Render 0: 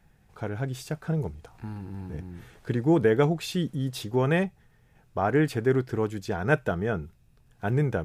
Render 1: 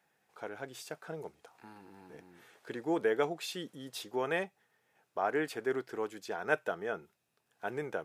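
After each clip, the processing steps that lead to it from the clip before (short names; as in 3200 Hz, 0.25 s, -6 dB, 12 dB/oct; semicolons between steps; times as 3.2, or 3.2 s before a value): HPF 430 Hz 12 dB/oct; gain -5 dB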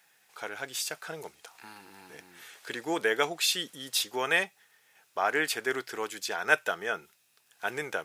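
tilt shelf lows -9 dB, about 1200 Hz; gain +7 dB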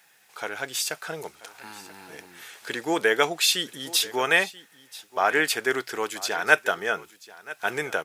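echo 0.984 s -19 dB; gain +5.5 dB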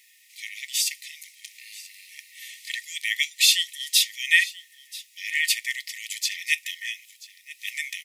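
brick-wall FIR high-pass 1800 Hz; gain +4 dB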